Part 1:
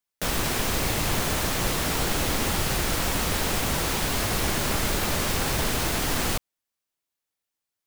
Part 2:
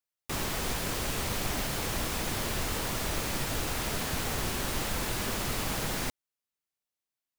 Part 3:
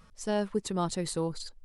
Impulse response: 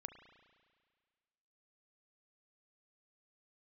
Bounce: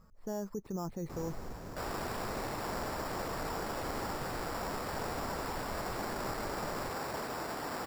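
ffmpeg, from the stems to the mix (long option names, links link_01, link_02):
-filter_complex "[0:a]highpass=frequency=730:poles=1,adelay=1550,volume=-3dB[link_01];[1:a]volume=26.5dB,asoftclip=hard,volume=-26.5dB,adelay=800,volume=-9dB[link_02];[2:a]alimiter=level_in=1.5dB:limit=-24dB:level=0:latency=1:release=35,volume=-1.5dB,volume=-3dB[link_03];[link_01][link_02][link_03]amix=inputs=3:normalize=0,lowpass=1200,acrusher=samples=7:mix=1:aa=0.000001"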